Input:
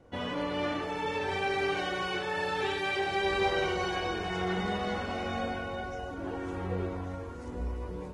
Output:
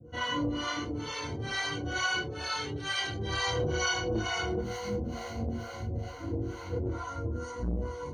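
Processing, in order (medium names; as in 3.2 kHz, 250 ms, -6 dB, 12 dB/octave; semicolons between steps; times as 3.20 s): 4.60–6.83 s: median filter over 41 samples; dynamic bell 510 Hz, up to -3 dB, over -40 dBFS, Q 0.83; harmonic tremolo 2.2 Hz, depth 100%, crossover 570 Hz; rippled EQ curve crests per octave 1.9, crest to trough 15 dB; reverberation, pre-delay 3 ms, DRR -9.5 dB; transformer saturation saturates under 280 Hz; trim -8 dB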